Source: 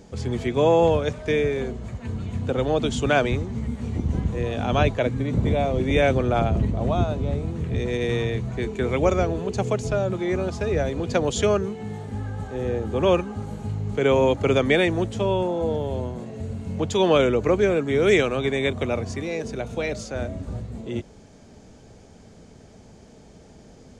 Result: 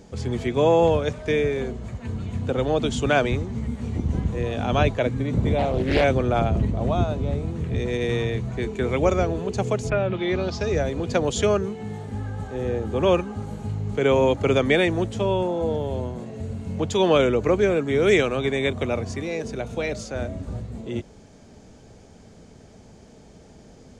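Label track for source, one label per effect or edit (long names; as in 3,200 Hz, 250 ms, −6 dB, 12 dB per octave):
5.580000	6.040000	highs frequency-modulated by the lows depth 0.68 ms
9.890000	10.780000	low-pass with resonance 2,100 Hz → 6,800 Hz, resonance Q 2.8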